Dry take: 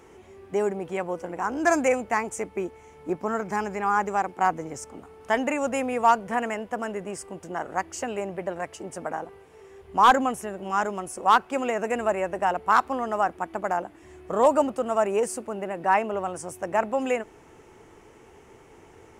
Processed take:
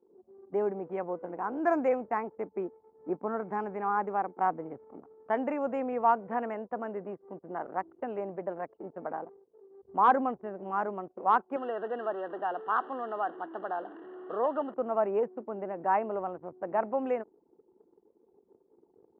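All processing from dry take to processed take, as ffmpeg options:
ffmpeg -i in.wav -filter_complex "[0:a]asettb=1/sr,asplit=3[link_01][link_02][link_03];[link_01]atrim=end=11.564[link_04];[link_02]atrim=start=11.56:end=14.74,asetpts=PTS-STARTPTS,afade=type=in:duration=0.004:curve=qsin,afade=type=out:start_time=3.176:duration=0.004:curve=qsin,aeval=exprs='val(0)+0.5*0.0282*sgn(val(0))':channel_layout=same,asuperstop=centerf=2300:order=12:qfactor=2.6,highpass=390,equalizer=frequency=580:width_type=q:width=4:gain=-7,equalizer=frequency=930:width_type=q:width=4:gain=-7,equalizer=frequency=2900:width_type=q:width=4:gain=6,lowpass=frequency=4000:width=0.5412,lowpass=frequency=4000:width=1.3066[link_05];[link_03]atrim=start=14.736[link_06];[link_04][link_05]acrossfade=duration=0.004:curve1=hsin:curve2=qsin[link_07];[link_07][link_06]acrossfade=duration=0.004:curve1=qsin:curve2=hsin,lowpass=1200,anlmdn=0.0631,highpass=190,volume=-4dB" out.wav

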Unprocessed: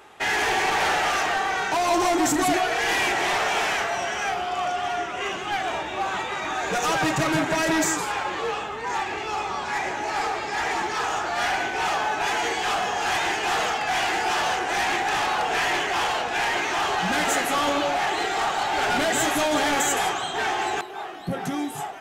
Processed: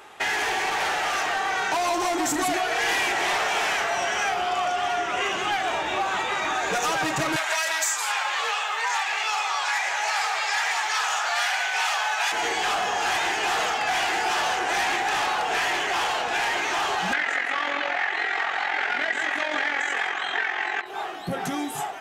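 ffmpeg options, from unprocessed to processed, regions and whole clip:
ffmpeg -i in.wav -filter_complex "[0:a]asettb=1/sr,asplit=3[link_01][link_02][link_03];[link_01]atrim=end=7.364[link_04];[link_02]atrim=start=7.36:end=12.32,asetpts=PTS-STARTPTS,afade=type=in:duration=0.004:curve=qsin,afade=type=out:start_time=4.956:duration=0.004:curve=qsin,highpass=frequency=530:width=0.5412,highpass=frequency=530:width=1.3066,tiltshelf=frequency=850:gain=-6.5[link_05];[link_03]atrim=start=12.316[link_06];[link_04][link_05]acrossfade=duration=0.004:curve1=hsin:curve2=qsin[link_07];[link_07][link_06]acrossfade=duration=0.004:curve1=qsin:curve2=hsin,asettb=1/sr,asplit=3[link_08][link_09][link_10];[link_08]atrim=end=17.134[link_11];[link_09]atrim=start=17.13:end=20.86,asetpts=PTS-STARTPTS,afade=type=in:duration=0.004:curve=qsin,afade=type=out:start_time=3.726:duration=0.004:curve=qsin,equalizer=frequency=1900:width=1.7:gain=14,tremolo=f=44:d=0.621,highpass=220,lowpass=4700[link_12];[link_10]atrim=start=20.856[link_13];[link_11][link_12]acrossfade=duration=0.004:curve1=hsin:curve2=qsin[link_14];[link_14][link_13]acrossfade=duration=0.004:curve1=qsin:curve2=hsin,dynaudnorm=framelen=120:gausssize=31:maxgain=11.5dB,lowshelf=frequency=380:gain=-6.5,acompressor=threshold=-27dB:ratio=6,volume=3.5dB" out.wav

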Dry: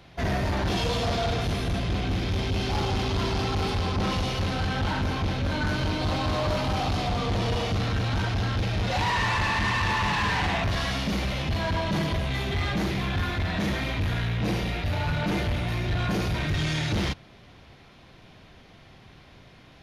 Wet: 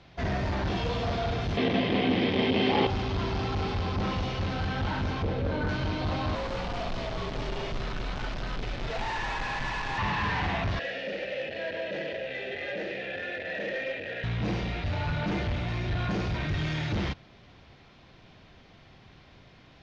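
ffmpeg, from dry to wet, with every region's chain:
ffmpeg -i in.wav -filter_complex "[0:a]asettb=1/sr,asplit=3[link_01][link_02][link_03];[link_01]atrim=end=1.574[link_04];[link_02]atrim=start=1.57:end=2.87,asetpts=PTS-STARTPTS,afade=type=in:duration=0.004:curve=qsin,afade=type=out:start_time=1.296:duration=0.004:curve=qsin,acontrast=82,highpass=210,equalizer=frequency=240:width_type=q:width=4:gain=8,equalizer=frequency=470:width_type=q:width=4:gain=7,equalizer=frequency=1400:width_type=q:width=4:gain=-8,equalizer=frequency=2000:width_type=q:width=4:gain=5,equalizer=frequency=3100:width_type=q:width=4:gain=6,lowpass=frequency=5400:width=0.5412,lowpass=frequency=5400:width=1.3066[link_05];[link_03]atrim=start=2.866[link_06];[link_04][link_05]acrossfade=duration=0.004:curve1=hsin:curve2=qsin[link_07];[link_07][link_06]acrossfade=duration=0.004:curve1=qsin:curve2=hsin,asettb=1/sr,asplit=3[link_08][link_09][link_10];[link_08]atrim=end=5.234[link_11];[link_09]atrim=start=5.23:end=5.69,asetpts=PTS-STARTPTS,afade=type=in:duration=0.004:curve=qsin,afade=type=out:start_time=0.456:duration=0.004:curve=qsin,lowpass=frequency=1800:poles=1,equalizer=frequency=470:width_type=o:width=0.46:gain=11.5[link_12];[link_10]atrim=start=5.686[link_13];[link_11][link_12]acrossfade=duration=0.004:curve1=hsin:curve2=qsin[link_14];[link_14][link_13]acrossfade=duration=0.004:curve1=qsin:curve2=hsin,asettb=1/sr,asplit=3[link_15][link_16][link_17];[link_15]atrim=end=6.354[link_18];[link_16]atrim=start=6.35:end=9.98,asetpts=PTS-STARTPTS,afade=type=in:duration=0.004:curve=qsin,afade=type=out:start_time=3.626:duration=0.004:curve=qsin,asoftclip=type=hard:threshold=-27dB,afreqshift=-74[link_19];[link_17]atrim=start=9.976[link_20];[link_18][link_19]acrossfade=duration=0.004:curve1=hsin:curve2=qsin[link_21];[link_21][link_20]acrossfade=duration=0.004:curve1=qsin:curve2=hsin,asettb=1/sr,asplit=3[link_22][link_23][link_24];[link_22]atrim=end=10.794[link_25];[link_23]atrim=start=10.79:end=14.24,asetpts=PTS-STARTPTS,afade=type=in:duration=0.004:curve=qsin,afade=type=out:start_time=3.446:duration=0.004:curve=qsin,asplit=3[link_26][link_27][link_28];[link_26]bandpass=frequency=530:width_type=q:width=8,volume=0dB[link_29];[link_27]bandpass=frequency=1840:width_type=q:width=8,volume=-6dB[link_30];[link_28]bandpass=frequency=2480:width_type=q:width=8,volume=-9dB[link_31];[link_29][link_30][link_31]amix=inputs=3:normalize=0,lowshelf=frequency=100:gain=-10,aeval=exprs='0.0708*sin(PI/2*2.82*val(0)/0.0708)':channel_layout=same[link_32];[link_24]atrim=start=14.236[link_33];[link_25][link_32]acrossfade=duration=0.004:curve1=hsin:curve2=qsin[link_34];[link_34][link_33]acrossfade=duration=0.004:curve1=qsin:curve2=hsin,lowpass=frequency=6400:width=0.5412,lowpass=frequency=6400:width=1.3066,acrossover=split=3100[link_35][link_36];[link_36]acompressor=threshold=-42dB:ratio=4:attack=1:release=60[link_37];[link_35][link_37]amix=inputs=2:normalize=0,volume=-3dB" out.wav

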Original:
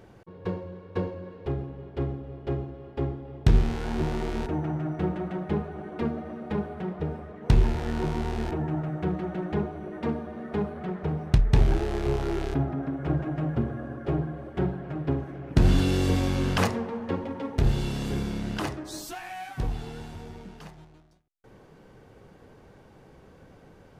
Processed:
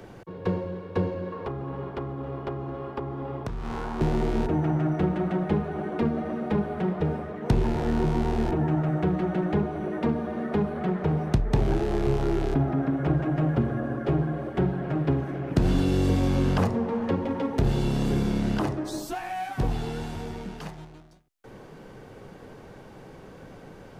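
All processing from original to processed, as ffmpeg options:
ffmpeg -i in.wav -filter_complex "[0:a]asettb=1/sr,asplit=3[link_01][link_02][link_03];[link_01]atrim=end=1.324[link_04];[link_02]atrim=start=1.32:end=4.01,asetpts=PTS-STARTPTS,afade=type=in:duration=0.004:curve=qsin,afade=type=out:start_time=2.686:duration=0.004:curve=qsin,acompressor=threshold=-35dB:ratio=10:attack=3.2:release=140:knee=1:detection=peak,equalizer=frequency=1100:width_type=o:width=0.87:gain=11.5[link_05];[link_03]atrim=start=4.006[link_06];[link_04][link_05]acrossfade=duration=0.004:curve1=hsin:curve2=qsin[link_07];[link_07][link_06]acrossfade=duration=0.004:curve1=qsin:curve2=hsin,equalizer=frequency=69:width_type=o:width=0.75:gain=-8,acrossover=split=96|220|1100[link_08][link_09][link_10][link_11];[link_08]acompressor=threshold=-33dB:ratio=4[link_12];[link_09]acompressor=threshold=-34dB:ratio=4[link_13];[link_10]acompressor=threshold=-34dB:ratio=4[link_14];[link_11]acompressor=threshold=-49dB:ratio=4[link_15];[link_12][link_13][link_14][link_15]amix=inputs=4:normalize=0,volume=7.5dB" out.wav

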